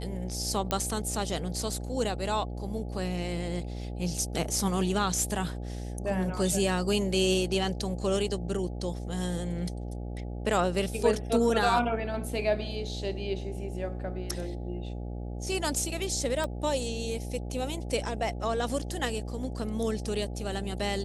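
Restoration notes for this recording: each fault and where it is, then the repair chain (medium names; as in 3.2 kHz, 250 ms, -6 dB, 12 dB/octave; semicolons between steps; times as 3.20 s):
buzz 60 Hz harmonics 14 -36 dBFS
0.71 s: pop -12 dBFS
16.44 s: pop -19 dBFS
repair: de-click; de-hum 60 Hz, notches 14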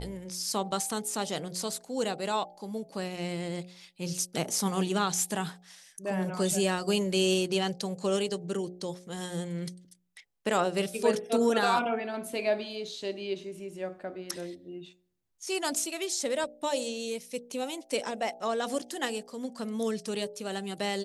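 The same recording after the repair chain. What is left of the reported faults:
nothing left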